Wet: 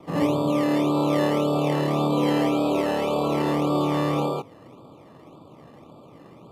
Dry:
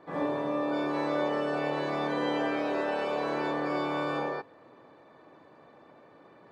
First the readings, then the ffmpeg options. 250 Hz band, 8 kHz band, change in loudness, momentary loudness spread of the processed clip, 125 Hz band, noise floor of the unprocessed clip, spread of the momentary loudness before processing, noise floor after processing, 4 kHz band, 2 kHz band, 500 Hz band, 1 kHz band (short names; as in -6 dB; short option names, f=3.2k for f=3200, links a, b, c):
+10.0 dB, n/a, +7.5 dB, 2 LU, +15.5 dB, -56 dBFS, 2 LU, -49 dBFS, +7.5 dB, +0.5 dB, +6.0 dB, +5.0 dB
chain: -filter_complex "[0:a]asuperstop=centerf=1800:order=20:qfactor=1.8,acrossover=split=120|700|2000[a][b][c][d];[b]acrusher=samples=15:mix=1:aa=0.000001:lfo=1:lforange=9:lforate=1.8[e];[a][e][c][d]amix=inputs=4:normalize=0,bass=f=250:g=11,treble=f=4k:g=-7,volume=6.5dB" -ar 32000 -c:a libmp3lame -b:a 96k